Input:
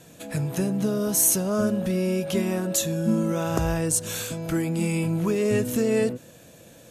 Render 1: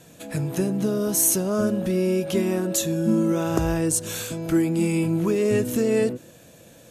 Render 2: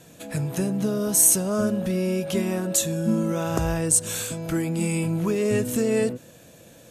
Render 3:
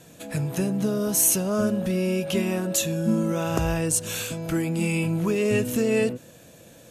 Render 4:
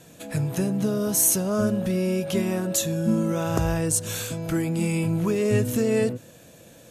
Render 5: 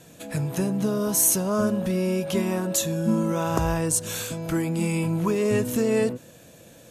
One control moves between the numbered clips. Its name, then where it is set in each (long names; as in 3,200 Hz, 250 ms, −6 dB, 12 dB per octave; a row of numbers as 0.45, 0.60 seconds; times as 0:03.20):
dynamic equaliser, frequency: 340, 8,400, 2,700, 110, 1,000 Hertz